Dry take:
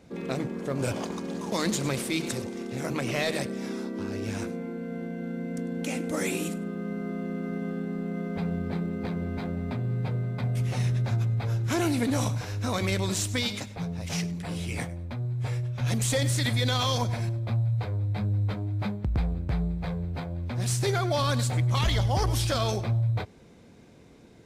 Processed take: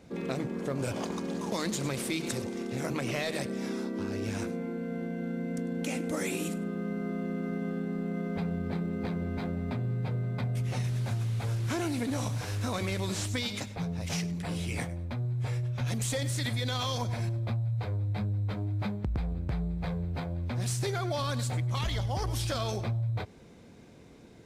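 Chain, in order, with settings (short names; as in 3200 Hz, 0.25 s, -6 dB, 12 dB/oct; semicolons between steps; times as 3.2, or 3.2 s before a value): 10.84–13.29 delta modulation 64 kbps, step -37 dBFS; compressor, threshold -28 dBFS, peak gain reduction 8 dB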